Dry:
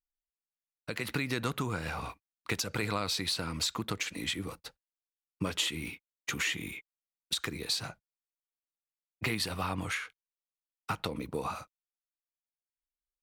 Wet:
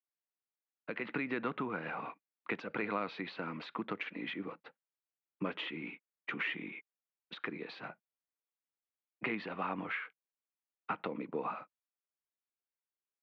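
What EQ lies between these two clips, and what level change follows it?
high-pass filter 190 Hz 24 dB per octave
low-pass filter 2,600 Hz 24 dB per octave
high-frequency loss of the air 61 metres
−1.5 dB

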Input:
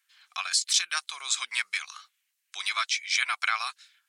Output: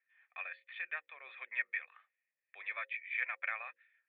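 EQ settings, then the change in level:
formant resonators in series e
high-frequency loss of the air 280 metres
mains-hum notches 60/120/180/240/300/360/420/480/540 Hz
+9.5 dB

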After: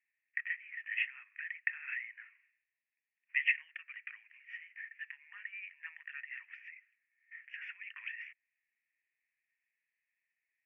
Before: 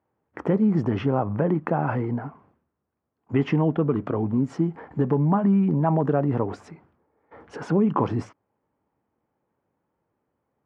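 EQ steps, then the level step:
Chebyshev high-pass with heavy ripple 1,800 Hz, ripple 3 dB
elliptic low-pass filter 2,600 Hz, stop band 40 dB
spectral tilt −3 dB per octave
+14.0 dB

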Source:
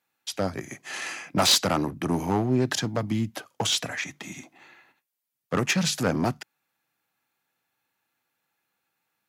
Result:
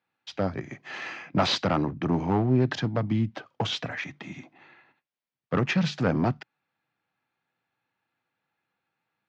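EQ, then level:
low-pass filter 6,500 Hz 12 dB per octave
high-frequency loss of the air 200 metres
parametric band 130 Hz +3.5 dB 0.89 octaves
0.0 dB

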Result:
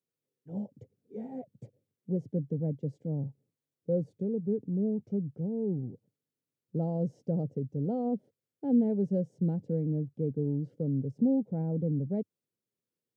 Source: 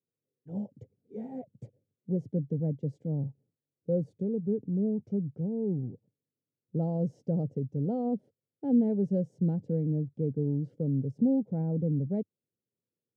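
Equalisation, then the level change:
low-shelf EQ 76 Hz −8.5 dB
0.0 dB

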